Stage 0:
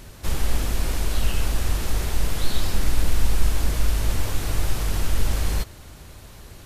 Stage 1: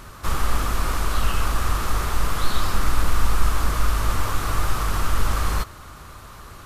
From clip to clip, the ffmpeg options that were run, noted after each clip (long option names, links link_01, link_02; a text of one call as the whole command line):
ffmpeg -i in.wav -af "equalizer=frequency=1200:width_type=o:width=0.67:gain=15" out.wav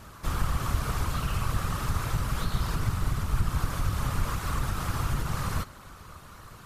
ffmpeg -i in.wav -af "acompressor=threshold=-15dB:ratio=6,afftfilt=real='hypot(re,im)*cos(2*PI*random(0))':imag='hypot(re,im)*sin(2*PI*random(1))':win_size=512:overlap=0.75" out.wav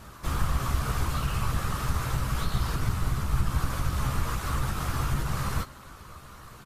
ffmpeg -i in.wav -filter_complex "[0:a]asplit=2[link_01][link_02];[link_02]adelay=15,volume=-7dB[link_03];[link_01][link_03]amix=inputs=2:normalize=0" out.wav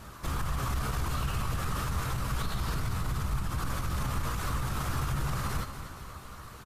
ffmpeg -i in.wav -af "alimiter=limit=-23.5dB:level=0:latency=1:release=31,aecho=1:1:236|472|708|944|1180|1416:0.266|0.152|0.0864|0.0493|0.0281|0.016" out.wav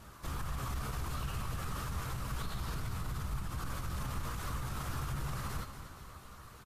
ffmpeg -i in.wav -af "volume=-6.5dB" -ar 44100 -c:a libvorbis -b:a 64k out.ogg